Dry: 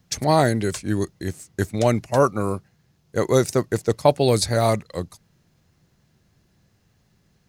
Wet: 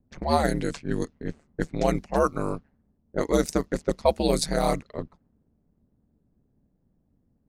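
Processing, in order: ring modulator 74 Hz; low-pass opened by the level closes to 540 Hz, open at -19 dBFS; gain -1.5 dB

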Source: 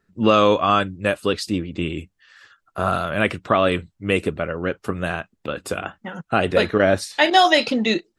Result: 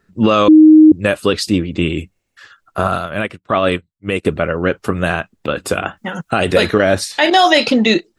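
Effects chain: 0.48–0.92 bleep 311 Hz -6.5 dBFS; 2.14–2.35 spectral repair 360–8500 Hz before; 5.97–6.95 high shelf 4700 Hz +10 dB; maximiser +9 dB; 2.87–4.25 upward expander 2.5:1, over -29 dBFS; gain -1 dB

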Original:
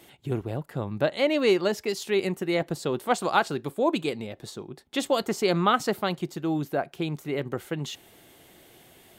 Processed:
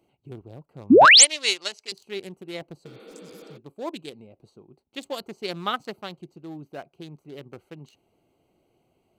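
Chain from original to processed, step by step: Wiener smoothing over 25 samples; 1.05–1.92 weighting filter ITU-R 468; 2.88–3.55 spectral repair 210–4700 Hz before; high shelf 2300 Hz +11.5 dB; 0.9–1.25 painted sound rise 210–9900 Hz -8 dBFS; upward expander 1.5:1, over -25 dBFS; gain -2.5 dB

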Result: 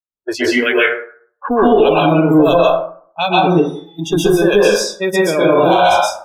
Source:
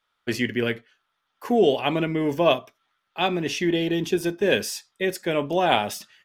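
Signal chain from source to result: one diode to ground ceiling -14.5 dBFS; 0.65–1.48 band shelf 1900 Hz +8 dB; 5.34–5.89 flutter echo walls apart 7.7 m, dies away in 0.64 s; compressor 2:1, threshold -26 dBFS, peak gain reduction 6 dB; low-pass opened by the level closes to 400 Hz, open at -24.5 dBFS; 3.47–3.99 resonator 120 Hz, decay 0.6 s, harmonics odd, mix 90%; spectral noise reduction 29 dB; plate-style reverb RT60 0.54 s, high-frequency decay 0.45×, pre-delay 0.115 s, DRR -7 dB; maximiser +12.5 dB; gain -1.5 dB

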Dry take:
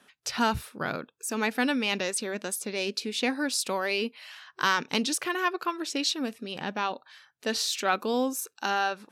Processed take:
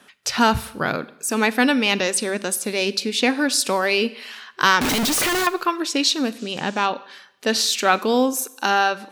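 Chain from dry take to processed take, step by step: 4.81–5.47 infinite clipping; Schroeder reverb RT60 0.83 s, combs from 32 ms, DRR 17.5 dB; 6.37–6.85 band noise 2400–7700 Hz -55 dBFS; gain +8.5 dB

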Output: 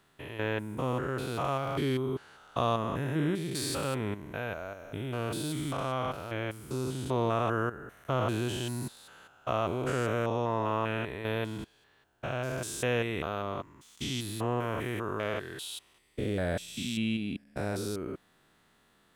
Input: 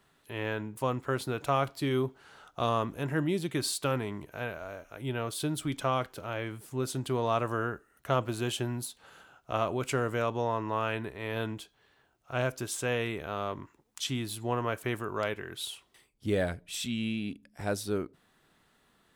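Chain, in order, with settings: stepped spectrum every 0.2 s; gain +2.5 dB

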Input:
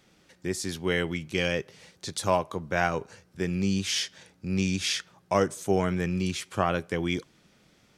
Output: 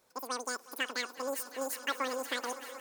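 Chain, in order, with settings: wide varispeed 2.84×; swelling echo 0.185 s, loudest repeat 5, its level -17 dB; gain -8.5 dB

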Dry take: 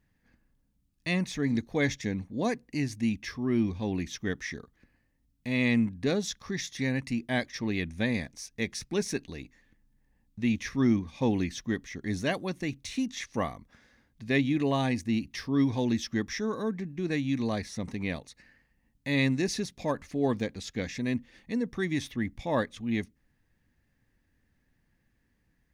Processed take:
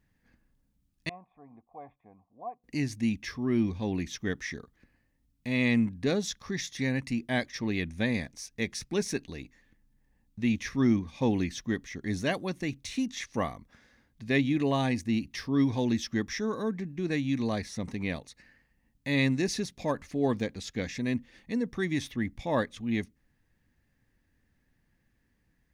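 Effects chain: 1.09–2.64 vocal tract filter a

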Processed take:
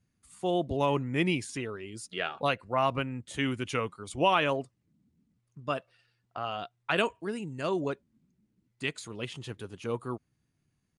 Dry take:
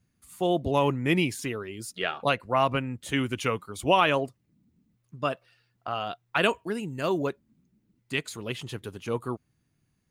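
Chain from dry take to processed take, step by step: downsampling 22050 Hz; tempo 0.92×; gain -3.5 dB

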